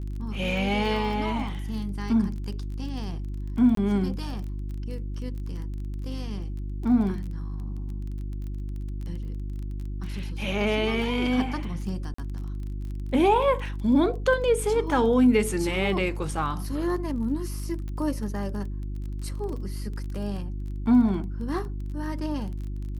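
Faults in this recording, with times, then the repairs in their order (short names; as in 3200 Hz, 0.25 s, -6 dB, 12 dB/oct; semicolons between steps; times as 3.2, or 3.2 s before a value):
crackle 22/s -35 dBFS
hum 50 Hz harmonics 7 -32 dBFS
3.75–3.77 gap 23 ms
12.14–12.18 gap 44 ms
17.88 pop -26 dBFS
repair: de-click; de-hum 50 Hz, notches 7; interpolate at 3.75, 23 ms; interpolate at 12.14, 44 ms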